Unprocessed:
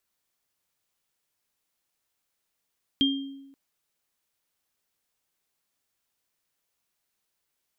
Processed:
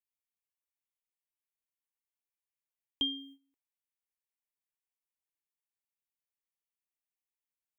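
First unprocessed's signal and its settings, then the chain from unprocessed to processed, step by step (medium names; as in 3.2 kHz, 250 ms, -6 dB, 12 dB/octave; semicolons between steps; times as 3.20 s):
sine partials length 0.53 s, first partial 274 Hz, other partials 3.2 kHz, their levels 1 dB, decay 1.02 s, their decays 0.49 s, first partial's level -20 dB
gate -41 dBFS, range -16 dB; peaking EQ 270 Hz -10 dB 2.5 oct; static phaser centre 920 Hz, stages 8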